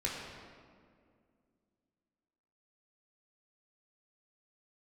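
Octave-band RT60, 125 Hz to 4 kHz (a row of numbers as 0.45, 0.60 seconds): 2.5, 3.0, 2.4, 1.9, 1.6, 1.2 seconds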